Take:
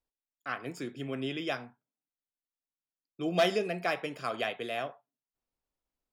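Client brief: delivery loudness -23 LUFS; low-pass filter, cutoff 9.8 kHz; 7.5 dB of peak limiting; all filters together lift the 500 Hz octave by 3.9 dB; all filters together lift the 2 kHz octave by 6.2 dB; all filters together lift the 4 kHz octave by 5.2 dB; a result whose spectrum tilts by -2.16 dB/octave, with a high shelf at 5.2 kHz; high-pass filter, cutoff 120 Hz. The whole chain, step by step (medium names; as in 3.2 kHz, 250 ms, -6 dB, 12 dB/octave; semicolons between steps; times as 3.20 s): high-pass 120 Hz; low-pass 9.8 kHz; peaking EQ 500 Hz +5 dB; peaking EQ 2 kHz +7 dB; peaking EQ 4 kHz +7.5 dB; treble shelf 5.2 kHz -9 dB; trim +8.5 dB; peak limiter -9.5 dBFS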